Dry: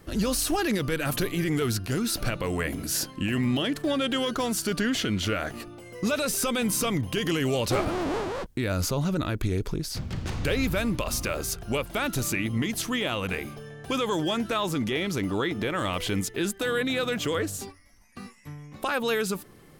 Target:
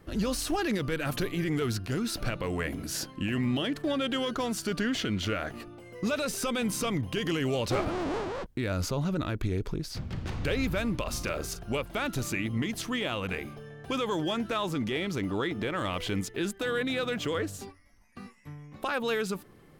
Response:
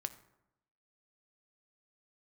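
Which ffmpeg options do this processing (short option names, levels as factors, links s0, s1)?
-filter_complex "[0:a]asplit=2[s0][s1];[s1]adynamicsmooth=sensitivity=6.5:basefreq=4600,volume=1[s2];[s0][s2]amix=inputs=2:normalize=0,asettb=1/sr,asplit=3[s3][s4][s5];[s3]atrim=end=11.104[s6];[s4]atrim=start=11.1:end=11.66,asetpts=PTS-STARTPTS,afade=t=in:d=0.004:c=qsin,afade=t=out:st=0.556:d=0.004:c=qsin,asplit=2[s7][s8];[s8]adelay=40,volume=0.282[s9];[s7][s9]amix=inputs=2:normalize=0,atrim=end_sample=24696[s10];[s5]atrim=start=11.656[s11];[s6][s10]acrossfade=d=0.004:c1=hsin:c2=qsin[s12];[s12][s11]acrossfade=d=0.004:c1=qsin:c2=hsin,volume=0.355"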